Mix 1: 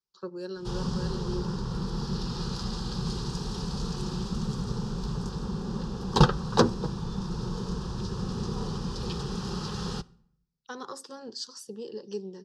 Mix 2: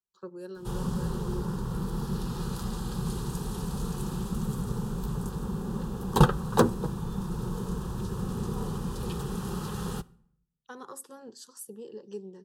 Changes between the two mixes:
speech -4.0 dB; master: remove synth low-pass 5100 Hz, resonance Q 3.6

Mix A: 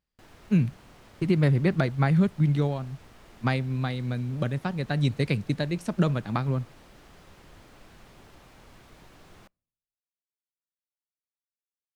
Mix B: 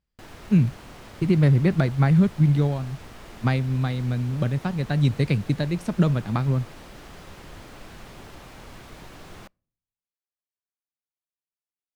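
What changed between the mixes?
speech: add low shelf 200 Hz +7 dB; background +9.0 dB

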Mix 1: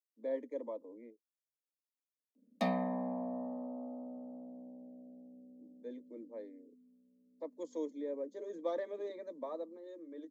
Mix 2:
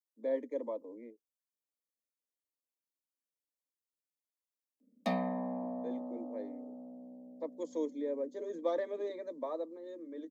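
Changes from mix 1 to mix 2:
speech +3.5 dB; background: entry +2.45 s

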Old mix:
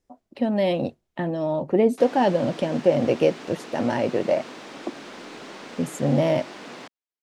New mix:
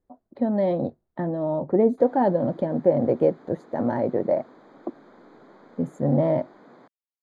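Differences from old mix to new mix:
background -9.0 dB; master: add running mean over 16 samples

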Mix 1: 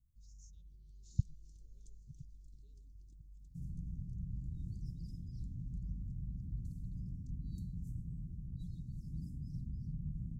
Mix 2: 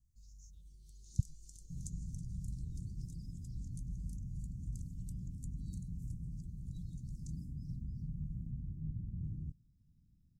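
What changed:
first sound: remove tape spacing loss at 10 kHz 27 dB; second sound: entry -1.85 s

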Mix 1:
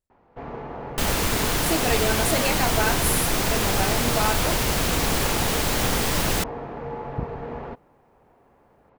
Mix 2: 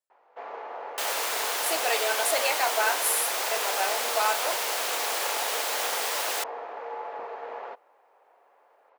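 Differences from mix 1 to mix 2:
second sound -3.5 dB; master: add HPF 520 Hz 24 dB/oct

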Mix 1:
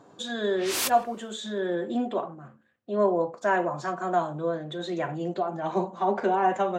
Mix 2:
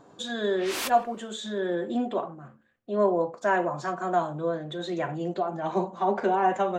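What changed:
background: add tone controls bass -7 dB, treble -7 dB; master: remove HPF 73 Hz

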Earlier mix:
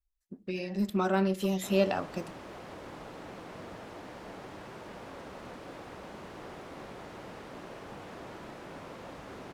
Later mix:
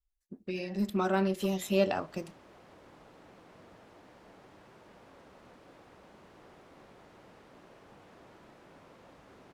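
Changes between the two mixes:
speech: send off; background -11.0 dB

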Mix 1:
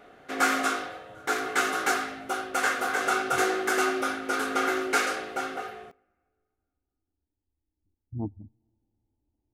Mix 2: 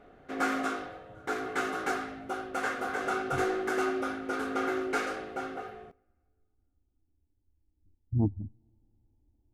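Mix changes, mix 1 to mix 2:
background -5.5 dB; master: add tilt -2.5 dB/oct

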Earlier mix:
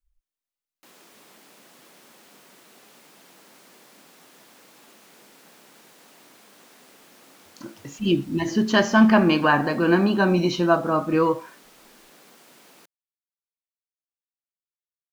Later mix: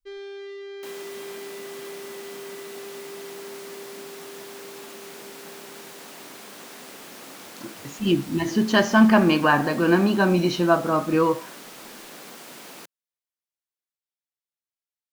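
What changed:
first sound: unmuted; second sound +10.0 dB

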